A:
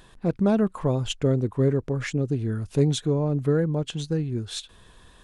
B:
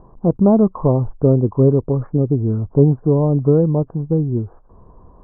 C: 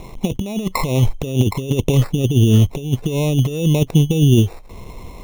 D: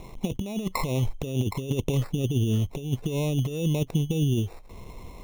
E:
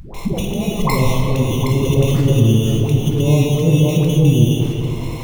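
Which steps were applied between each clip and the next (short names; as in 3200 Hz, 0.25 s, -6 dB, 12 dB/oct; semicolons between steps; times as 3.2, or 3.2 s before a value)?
steep low-pass 1100 Hz 48 dB/oct; gain +8.5 dB
negative-ratio compressor -19 dBFS, ratio -0.5; sample-and-hold 14×; gain +5 dB
compressor, threshold -13 dBFS, peak gain reduction 6.5 dB; gain -7.5 dB
dispersion highs, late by 0.144 s, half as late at 480 Hz; reverb RT60 2.9 s, pre-delay 6 ms, DRR -0.5 dB; mismatched tape noise reduction encoder only; gain +8 dB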